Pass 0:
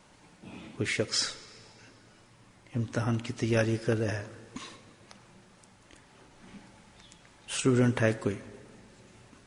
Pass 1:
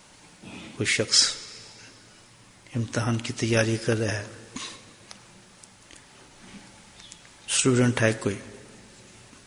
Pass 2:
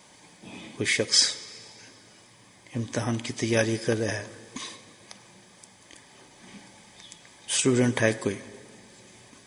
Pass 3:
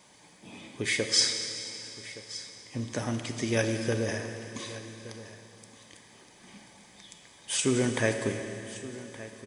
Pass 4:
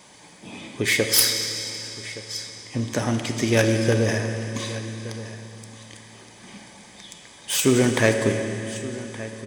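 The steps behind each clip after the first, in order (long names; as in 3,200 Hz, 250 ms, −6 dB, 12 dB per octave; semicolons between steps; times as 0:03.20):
high-shelf EQ 2,500 Hz +9 dB; level +3 dB
notch comb filter 1,400 Hz
single-tap delay 1,170 ms −16.5 dB; four-comb reverb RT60 3 s, combs from 27 ms, DRR 6 dB; level −4 dB
phase distortion by the signal itself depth 0.082 ms; spring reverb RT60 2.4 s, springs 36 ms, DRR 15.5 dB; level +8 dB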